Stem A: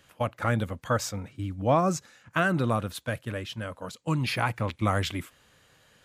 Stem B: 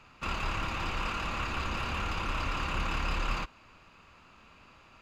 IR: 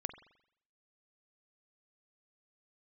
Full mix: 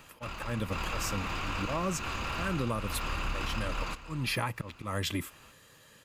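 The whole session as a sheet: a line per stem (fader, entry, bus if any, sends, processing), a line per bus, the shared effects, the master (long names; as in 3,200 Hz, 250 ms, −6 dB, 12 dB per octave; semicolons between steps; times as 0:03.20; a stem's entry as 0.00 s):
+3.0 dB, 0.00 s, no send, no echo send, volume swells 305 ms; notch comb filter 740 Hz
+2.0 dB, 0.00 s, no send, echo send −3.5 dB, automatic ducking −10 dB, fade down 0.20 s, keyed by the first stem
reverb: not used
echo: repeating echo 496 ms, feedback 16%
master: high-shelf EQ 9,000 Hz +9 dB; downward compressor 6 to 1, threshold −28 dBFS, peak gain reduction 9.5 dB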